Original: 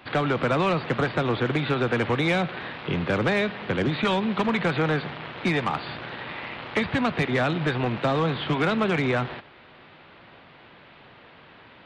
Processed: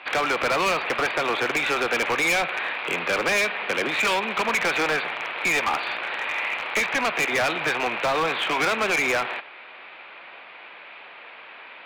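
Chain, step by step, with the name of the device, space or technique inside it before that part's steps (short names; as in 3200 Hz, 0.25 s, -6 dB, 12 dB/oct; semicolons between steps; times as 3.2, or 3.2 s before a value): megaphone (BPF 610–3600 Hz; bell 2400 Hz +8.5 dB 0.29 oct; hard clip -26 dBFS, distortion -8 dB); gain +7 dB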